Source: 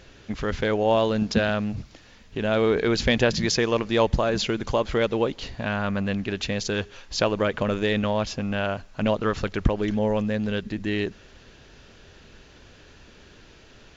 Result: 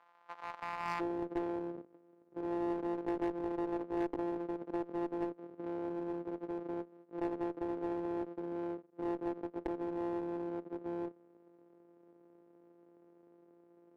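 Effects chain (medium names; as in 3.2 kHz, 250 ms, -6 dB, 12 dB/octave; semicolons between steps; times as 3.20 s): sorted samples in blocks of 256 samples; ladder band-pass 1.1 kHz, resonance 50%, from 0.99 s 410 Hz; one-sided clip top -35 dBFS, bottom -25 dBFS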